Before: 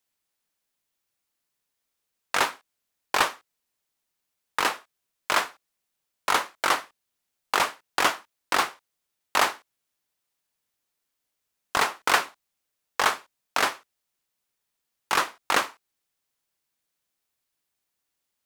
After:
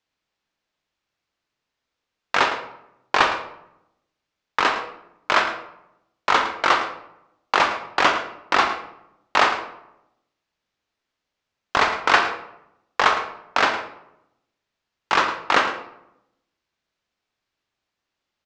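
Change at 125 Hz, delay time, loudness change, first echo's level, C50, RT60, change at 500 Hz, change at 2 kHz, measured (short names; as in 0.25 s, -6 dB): +6.0 dB, 0.11 s, +4.5 dB, -13.5 dB, 8.0 dB, 0.80 s, +6.5 dB, +5.5 dB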